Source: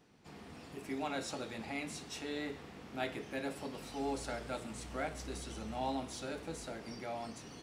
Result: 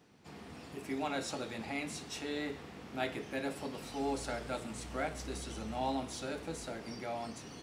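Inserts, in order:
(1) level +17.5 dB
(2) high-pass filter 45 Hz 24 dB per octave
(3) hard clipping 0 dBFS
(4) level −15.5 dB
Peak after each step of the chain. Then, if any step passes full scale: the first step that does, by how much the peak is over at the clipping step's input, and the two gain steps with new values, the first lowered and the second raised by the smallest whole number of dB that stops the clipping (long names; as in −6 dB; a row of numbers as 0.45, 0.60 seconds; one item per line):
−4.0, −3.5, −3.5, −19.0 dBFS
no step passes full scale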